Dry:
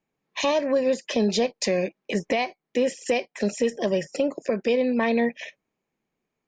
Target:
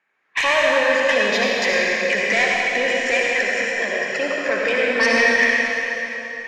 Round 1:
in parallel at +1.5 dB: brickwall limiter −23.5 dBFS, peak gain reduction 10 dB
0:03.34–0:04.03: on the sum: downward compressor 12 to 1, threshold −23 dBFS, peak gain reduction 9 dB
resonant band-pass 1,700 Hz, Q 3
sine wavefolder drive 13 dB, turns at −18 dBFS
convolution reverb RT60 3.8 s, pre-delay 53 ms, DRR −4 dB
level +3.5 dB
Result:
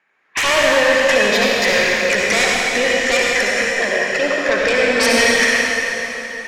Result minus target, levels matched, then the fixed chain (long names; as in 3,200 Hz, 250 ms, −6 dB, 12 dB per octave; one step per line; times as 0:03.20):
sine wavefolder: distortion +10 dB
in parallel at +1.5 dB: brickwall limiter −23.5 dBFS, peak gain reduction 10 dB
0:03.34–0:04.03: on the sum: downward compressor 12 to 1, threshold −23 dBFS, peak gain reduction 9 dB
resonant band-pass 1,700 Hz, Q 3
sine wavefolder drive 7 dB, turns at −18 dBFS
convolution reverb RT60 3.8 s, pre-delay 53 ms, DRR −4 dB
level +3.5 dB